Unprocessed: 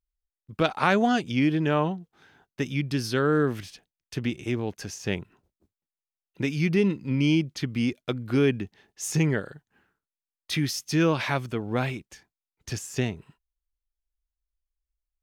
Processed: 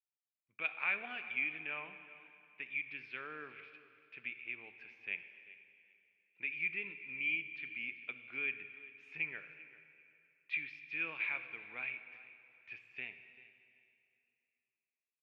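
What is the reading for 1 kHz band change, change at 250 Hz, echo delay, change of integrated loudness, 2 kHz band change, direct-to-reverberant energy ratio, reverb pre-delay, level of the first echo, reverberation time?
−21.0 dB, −33.0 dB, 390 ms, −13.0 dB, −4.5 dB, 9.0 dB, 6 ms, −18.0 dB, 2.6 s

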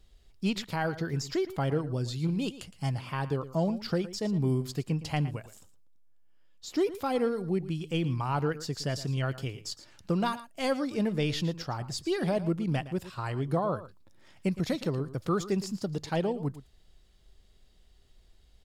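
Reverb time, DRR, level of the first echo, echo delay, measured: no reverb audible, no reverb audible, −15.0 dB, 114 ms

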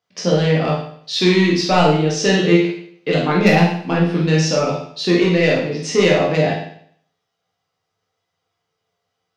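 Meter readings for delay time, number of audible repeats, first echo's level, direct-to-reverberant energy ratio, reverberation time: no echo audible, no echo audible, no echo audible, −4.5 dB, 0.60 s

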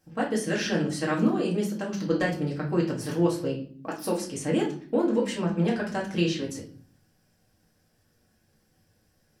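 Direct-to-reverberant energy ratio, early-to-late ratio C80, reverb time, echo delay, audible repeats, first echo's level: −4.0 dB, 14.5 dB, 0.50 s, no echo audible, no echo audible, no echo audible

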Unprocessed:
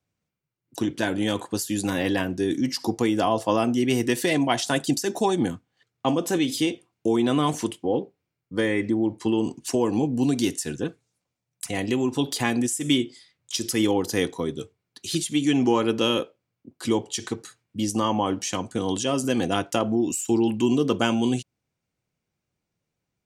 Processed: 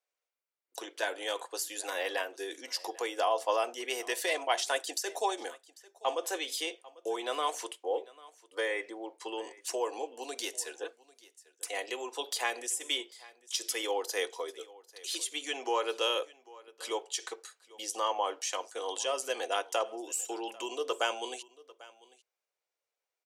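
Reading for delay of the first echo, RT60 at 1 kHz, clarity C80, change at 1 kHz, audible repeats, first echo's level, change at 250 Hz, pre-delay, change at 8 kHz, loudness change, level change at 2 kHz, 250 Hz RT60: 795 ms, no reverb audible, no reverb audible, −5.0 dB, 1, −21.5 dB, −24.0 dB, no reverb audible, −5.0 dB, −9.5 dB, −5.0 dB, no reverb audible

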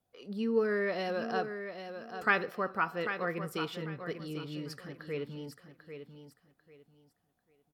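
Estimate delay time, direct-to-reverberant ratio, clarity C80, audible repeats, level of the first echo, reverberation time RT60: 794 ms, no reverb audible, no reverb audible, 3, −9.0 dB, no reverb audible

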